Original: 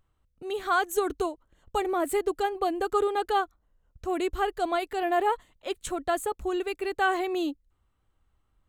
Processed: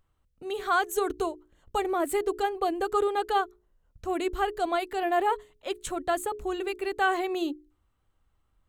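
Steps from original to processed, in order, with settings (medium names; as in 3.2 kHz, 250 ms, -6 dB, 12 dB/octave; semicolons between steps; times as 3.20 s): hum notches 60/120/180/240/300/360/420 Hz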